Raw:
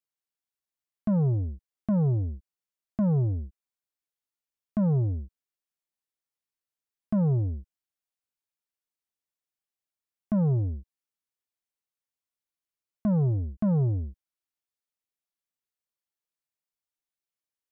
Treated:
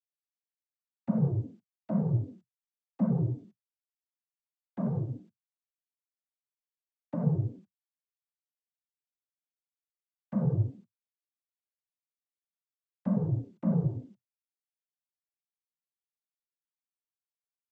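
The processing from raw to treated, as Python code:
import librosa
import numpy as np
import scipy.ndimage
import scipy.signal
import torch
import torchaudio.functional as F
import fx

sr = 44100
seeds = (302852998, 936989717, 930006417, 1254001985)

y = fx.quant_dither(x, sr, seeds[0], bits=12, dither='none')
y = fx.noise_vocoder(y, sr, seeds[1], bands=16)
y = y * librosa.db_to_amplitude(-4.0)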